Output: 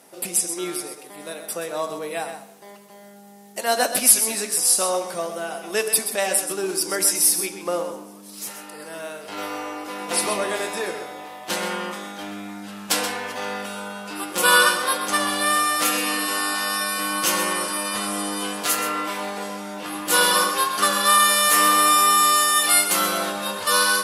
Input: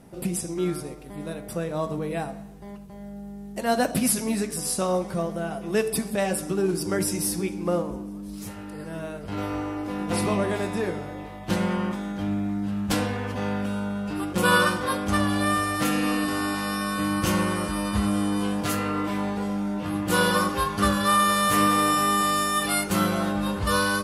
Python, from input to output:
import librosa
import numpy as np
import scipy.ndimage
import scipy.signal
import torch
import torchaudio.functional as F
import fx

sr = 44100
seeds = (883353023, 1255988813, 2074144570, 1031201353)

y = scipy.signal.sosfilt(scipy.signal.butter(2, 460.0, 'highpass', fs=sr, output='sos'), x)
y = fx.high_shelf(y, sr, hz=3100.0, db=9.0)
y = y + 10.0 ** (-9.5 / 20.0) * np.pad(y, (int(128 * sr / 1000.0), 0))[:len(y)]
y = y * 10.0 ** (2.5 / 20.0)